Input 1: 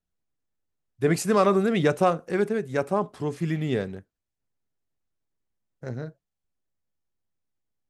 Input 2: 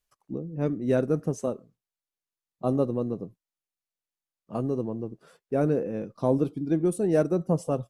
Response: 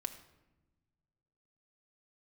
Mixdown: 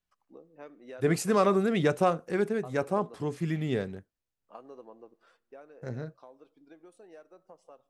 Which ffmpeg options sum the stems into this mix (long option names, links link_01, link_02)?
-filter_complex "[0:a]volume=-3.5dB[link_01];[1:a]adynamicsmooth=sensitivity=2:basefreq=4700,highpass=780,acompressor=threshold=-40dB:ratio=4,volume=-5dB,afade=type=out:start_time=5.25:duration=0.44:silence=0.446684,asplit=2[link_02][link_03];[link_03]volume=-10.5dB[link_04];[2:a]atrim=start_sample=2205[link_05];[link_04][link_05]afir=irnorm=-1:irlink=0[link_06];[link_01][link_02][link_06]amix=inputs=3:normalize=0"